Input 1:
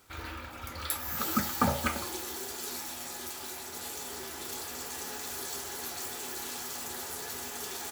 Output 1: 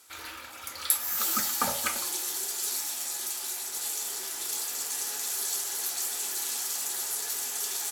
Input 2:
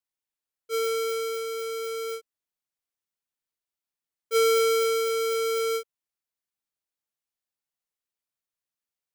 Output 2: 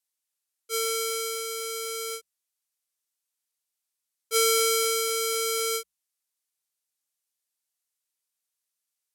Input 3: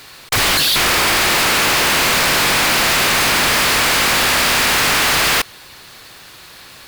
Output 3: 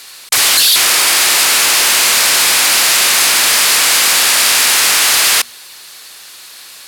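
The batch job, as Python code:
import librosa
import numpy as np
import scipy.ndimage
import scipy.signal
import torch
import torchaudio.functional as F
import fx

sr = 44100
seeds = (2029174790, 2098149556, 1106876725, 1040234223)

y = scipy.signal.sosfilt(scipy.signal.butter(2, 11000.0, 'lowpass', fs=sr, output='sos'), x)
y = fx.riaa(y, sr, side='recording')
y = fx.hum_notches(y, sr, base_hz=60, count=4)
y = y * librosa.db_to_amplitude(-1.5)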